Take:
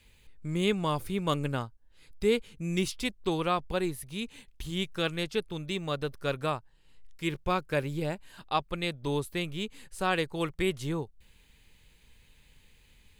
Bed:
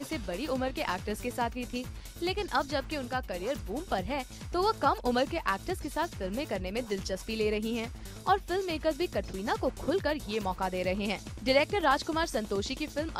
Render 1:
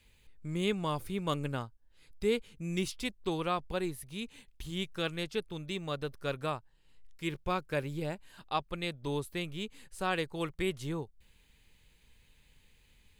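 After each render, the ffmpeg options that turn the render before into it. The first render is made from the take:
-af "volume=-4dB"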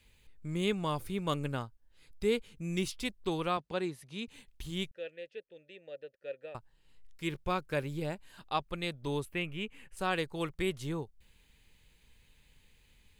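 -filter_complex "[0:a]asettb=1/sr,asplit=3[a][b][c];[a]atrim=end=3.574[d];[b]atrim=start=3.57:end=4.28,asetpts=PTS-STARTPTS,afade=t=in:d=0.004:c=qsin,afade=t=out:st=0.706:d=0.004:c=qsin,highpass=140,lowpass=6.9k[e];[c]atrim=start=4.276[f];[d][e]acrossfade=d=0.004:c1=hsin:c2=qsin[g];[g][f]acrossfade=d=0.004:c1=qsin:c2=hsin,asettb=1/sr,asplit=3[h][i][j];[h]atrim=end=4.914[k];[i]atrim=start=4.91:end=6.55,asetpts=PTS-STARTPTS,afade=t=in:d=0.004:c=qsin,afade=t=out:st=1.636:d=0.004:c=qsin,asplit=3[l][m][n];[l]bandpass=f=530:t=q:w=8,volume=0dB[o];[m]bandpass=f=1.84k:t=q:w=8,volume=-6dB[p];[n]bandpass=f=2.48k:t=q:w=8,volume=-9dB[q];[o][p][q]amix=inputs=3:normalize=0[r];[j]atrim=start=6.546[s];[k][r]acrossfade=d=0.004:c1=hsin:c2=qsin[t];[t][s]acrossfade=d=0.004:c1=qsin:c2=hsin,asettb=1/sr,asplit=3[u][v][w];[u]atrim=end=9.254[x];[v]atrim=start=9.25:end=9.97,asetpts=PTS-STARTPTS,afade=t=in:d=0.004:c=qsin,afade=t=out:st=0.716:d=0.004:c=qsin,highshelf=f=3.3k:t=q:w=3:g=-6.5[y];[w]atrim=start=9.966[z];[x][y]acrossfade=d=0.004:c1=hsin:c2=qsin[aa];[aa][z]acrossfade=d=0.004:c1=qsin:c2=hsin"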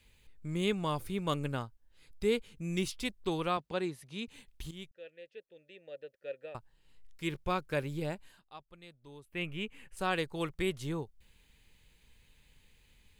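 -filter_complex "[0:a]asplit=4[a][b][c][d];[a]atrim=end=4.71,asetpts=PTS-STARTPTS,afade=t=out:st=4.706:d=0.004:c=hsin:silence=0.237137[e];[b]atrim=start=4.71:end=8.41,asetpts=PTS-STARTPTS,afade=t=in:d=1.4:silence=0.237137,afade=t=out:st=3.55:d=0.15:silence=0.133352[f];[c]atrim=start=8.41:end=9.28,asetpts=PTS-STARTPTS,volume=-17.5dB[g];[d]atrim=start=9.28,asetpts=PTS-STARTPTS,afade=t=in:d=0.15:silence=0.133352[h];[e][f][g][h]concat=n=4:v=0:a=1"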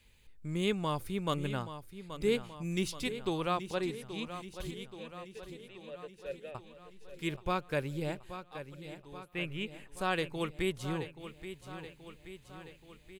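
-af "aecho=1:1:828|1656|2484|3312|4140|4968|5796:0.266|0.157|0.0926|0.0546|0.0322|0.019|0.0112"

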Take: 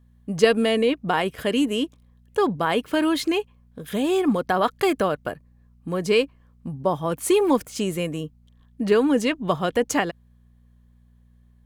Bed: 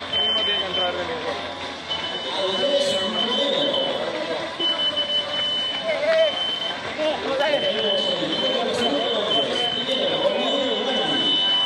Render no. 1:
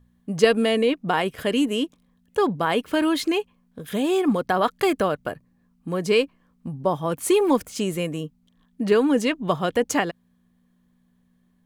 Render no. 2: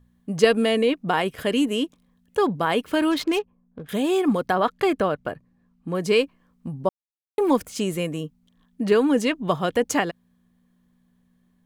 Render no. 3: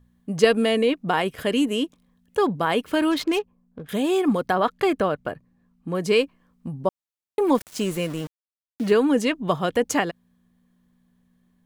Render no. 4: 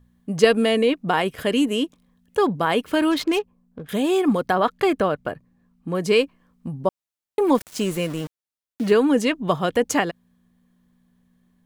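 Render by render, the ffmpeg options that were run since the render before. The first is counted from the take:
-af "bandreject=f=60:t=h:w=4,bandreject=f=120:t=h:w=4"
-filter_complex "[0:a]asettb=1/sr,asplit=3[a][b][c];[a]atrim=end=3.114[d];[b]atrim=start=3.11:end=3.89,asetpts=PTS-STARTPTS,afade=t=in:d=0.004:c=qsin,afade=t=out:st=0.776:d=0.004:c=qsin,adynamicsmooth=sensitivity=6.5:basefreq=920[e];[c]atrim=start=3.886[f];[d][e]acrossfade=d=0.004:c1=hsin:c2=qsin[g];[g][f]acrossfade=d=0.004:c1=qsin:c2=hsin,asettb=1/sr,asplit=3[h][i][j];[h]atrim=end=4.544[k];[i]atrim=start=4.54:end=5.95,asetpts=PTS-STARTPTS,afade=t=in:d=0.004:c=qsin,afade=t=out:st=1.406:d=0.004:c=qsin,highshelf=f=5.6k:g=-10.5[l];[j]atrim=start=5.946[m];[k][l]acrossfade=d=0.004:c1=hsin:c2=qsin[n];[n][m]acrossfade=d=0.004:c1=qsin:c2=hsin,asplit=3[o][p][q];[o]atrim=end=6.89,asetpts=PTS-STARTPTS,afade=t=out:st=6.886:d=0.004:c=hsin[r];[p]atrim=start=6.89:end=7.38,asetpts=PTS-STARTPTS,volume=0[s];[q]atrim=start=7.38,asetpts=PTS-STARTPTS,afade=t=in:d=0.004:c=hsin[t];[r][s][t]concat=n=3:v=0:a=1"
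-filter_complex "[0:a]asettb=1/sr,asplit=3[a][b][c];[a]atrim=end=7.554[d];[b]atrim=start=7.55:end=8.92,asetpts=PTS-STARTPTS,afade=t=in:d=0.004:c=qsin,afade=t=out:st=1.366:d=0.004:c=qsin,aeval=exprs='val(0)*gte(abs(val(0)),0.0178)':c=same[e];[c]atrim=start=8.916[f];[d][e]acrossfade=d=0.004:c1=hsin:c2=qsin[g];[g][f]acrossfade=d=0.004:c1=qsin:c2=hsin"
-af "volume=1.5dB"

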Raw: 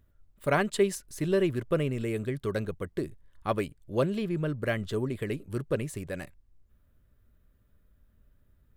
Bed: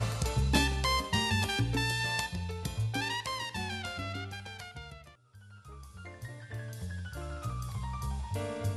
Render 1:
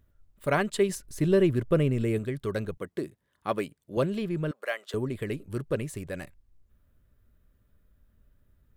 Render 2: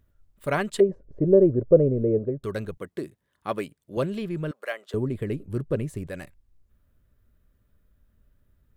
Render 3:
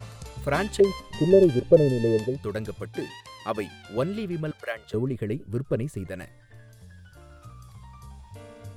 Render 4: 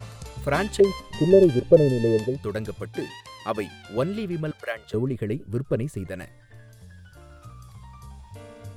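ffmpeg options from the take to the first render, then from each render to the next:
-filter_complex "[0:a]asettb=1/sr,asplit=3[a][b][c];[a]atrim=end=0.894[d];[b]atrim=start=0.89:end=2.19,asetpts=PTS-STARTPTS,afade=t=in:d=0.004:c=qsin,afade=t=out:st=1.296:d=0.004:c=qsin,lowshelf=f=460:g=6[e];[c]atrim=start=2.186[f];[d][e]acrossfade=d=0.004:c1=hsin:c2=qsin[g];[g][f]acrossfade=d=0.004:c1=qsin:c2=hsin,asettb=1/sr,asplit=3[h][i][j];[h]atrim=end=2.774[k];[i]atrim=start=2.77:end=3.97,asetpts=PTS-STARTPTS,afade=t=in:d=0.004:c=qsin,afade=t=out:st=1.196:d=0.004:c=qsin,highpass=160[l];[j]atrim=start=3.966[m];[k][l]acrossfade=d=0.004:c1=hsin:c2=qsin[n];[n][m]acrossfade=d=0.004:c1=qsin:c2=hsin,asettb=1/sr,asplit=3[o][p][q];[o]atrim=end=4.514[r];[p]atrim=start=4.51:end=4.94,asetpts=PTS-STARTPTS,afade=t=in:d=0.004:c=qsin,afade=t=out:st=0.426:d=0.004:c=qsin,highpass=f=550:w=0.5412,highpass=f=550:w=1.3066[s];[q]atrim=start=4.936[t];[r][s]acrossfade=d=0.004:c1=hsin:c2=qsin[u];[u][t]acrossfade=d=0.004:c1=qsin:c2=hsin"
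-filter_complex "[0:a]asettb=1/sr,asplit=3[a][b][c];[a]atrim=end=0.804[d];[b]atrim=start=0.8:end=2.44,asetpts=PTS-STARTPTS,afade=t=in:d=0.004:c=qsin,afade=t=out:st=1.636:d=0.004:c=qsin,lowpass=f=530:t=q:w=3.2[e];[c]atrim=start=2.436[f];[d][e]acrossfade=d=0.004:c1=hsin:c2=qsin[g];[g][f]acrossfade=d=0.004:c1=qsin:c2=hsin,asettb=1/sr,asplit=3[h][i][j];[h]atrim=end=4.724[k];[i]atrim=start=4.72:end=6.07,asetpts=PTS-STARTPTS,afade=t=in:d=0.004:c=qsin,afade=t=out:st=1.346:d=0.004:c=qsin,tiltshelf=f=770:g=5[l];[j]atrim=start=6.066[m];[k][l]acrossfade=d=0.004:c1=hsin:c2=qsin[n];[n][m]acrossfade=d=0.004:c1=qsin:c2=hsin"
-filter_complex "[1:a]volume=-9dB[a];[0:a][a]amix=inputs=2:normalize=0"
-af "volume=1.5dB"

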